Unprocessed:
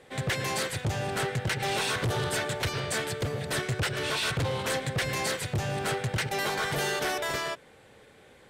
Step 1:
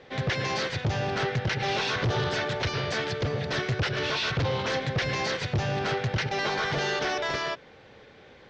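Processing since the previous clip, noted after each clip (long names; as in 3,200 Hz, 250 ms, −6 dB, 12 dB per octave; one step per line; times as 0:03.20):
Butterworth low-pass 6,000 Hz 48 dB per octave
brickwall limiter −25 dBFS, peak gain reduction 4 dB
level +3.5 dB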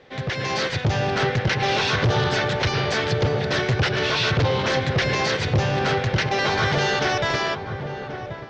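feedback echo with a low-pass in the loop 1,083 ms, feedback 56%, low-pass 1,000 Hz, level −8 dB
automatic gain control gain up to 6 dB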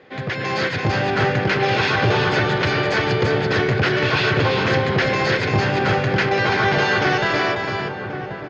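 single-tap delay 338 ms −4.5 dB
convolution reverb RT60 0.70 s, pre-delay 3 ms, DRR 13.5 dB
level −3.5 dB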